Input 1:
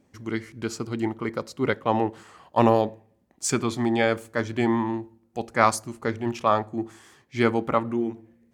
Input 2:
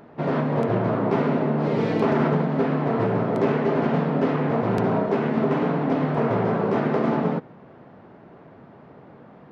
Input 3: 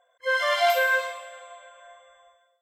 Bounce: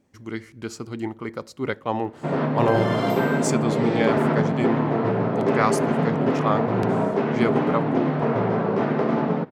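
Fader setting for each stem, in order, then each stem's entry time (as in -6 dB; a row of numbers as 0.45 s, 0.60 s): -2.5 dB, 0.0 dB, -8.5 dB; 0.00 s, 2.05 s, 2.40 s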